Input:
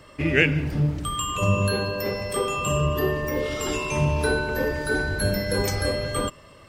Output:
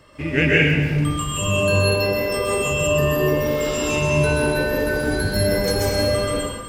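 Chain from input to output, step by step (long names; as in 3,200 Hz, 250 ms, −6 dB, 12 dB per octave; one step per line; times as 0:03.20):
dense smooth reverb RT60 1.2 s, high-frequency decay 1×, pre-delay 115 ms, DRR −5.5 dB
level −2.5 dB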